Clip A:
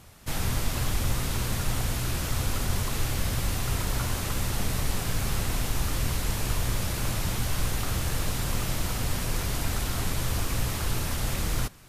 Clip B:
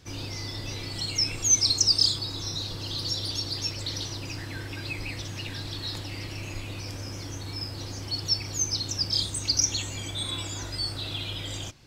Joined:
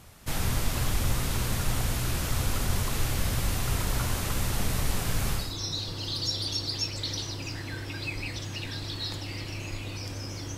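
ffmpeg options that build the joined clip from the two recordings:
ffmpeg -i cue0.wav -i cue1.wav -filter_complex "[0:a]apad=whole_dur=10.57,atrim=end=10.57,atrim=end=5.58,asetpts=PTS-STARTPTS[link_01];[1:a]atrim=start=2.13:end=7.4,asetpts=PTS-STARTPTS[link_02];[link_01][link_02]acrossfade=duration=0.28:curve1=tri:curve2=tri" out.wav

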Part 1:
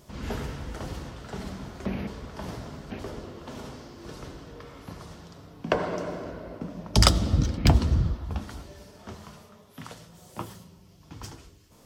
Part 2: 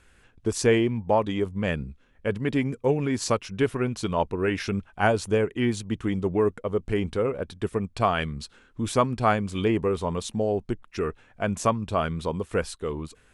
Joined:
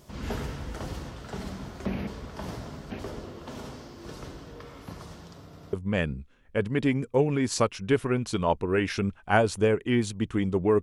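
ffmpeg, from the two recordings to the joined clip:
ffmpeg -i cue0.wav -i cue1.wav -filter_complex "[0:a]apad=whole_dur=10.82,atrim=end=10.82,asplit=3[link_01][link_02][link_03];[link_01]atrim=end=5.532[link_04];[link_02]atrim=start=5.428:end=5.532[link_05];[link_03]atrim=start=5.428:end=5.532[link_06];[1:a]atrim=start=1.428:end=6.52[link_07];[link_04][link_05]acrossfade=duration=0.004:curve1=hsin:curve2=hsin[link_08];[link_08][link_06]acrossfade=duration=0.004:curve1=hsin:curve2=hsin[link_09];[link_09][link_07]acrossfade=duration=0.004:curve1=hsin:curve2=hsin" out.wav

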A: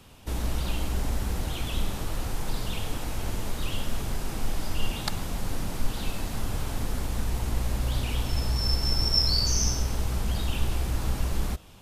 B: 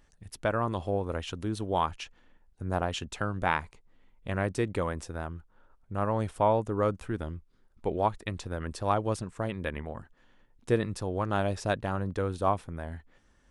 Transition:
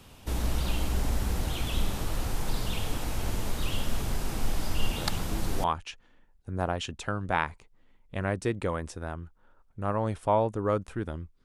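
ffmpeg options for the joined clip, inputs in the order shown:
ffmpeg -i cue0.wav -i cue1.wav -filter_complex "[1:a]asplit=2[link_01][link_02];[0:a]apad=whole_dur=11.44,atrim=end=11.44,atrim=end=5.642[link_03];[link_02]atrim=start=1.768:end=7.57[link_04];[link_01]atrim=start=1.11:end=1.77,asetpts=PTS-STARTPTS,volume=-7dB,afade=type=in:duration=0.004:curve=hsin,afade=type=out:start_time=0.656:duration=0.004:curve=hsin,adelay=4980[link_05];[link_03][link_04]acrossfade=duration=0.004:curve1=hsin:curve2=hsin[link_06];[link_06][link_05]amix=inputs=2:normalize=0" out.wav

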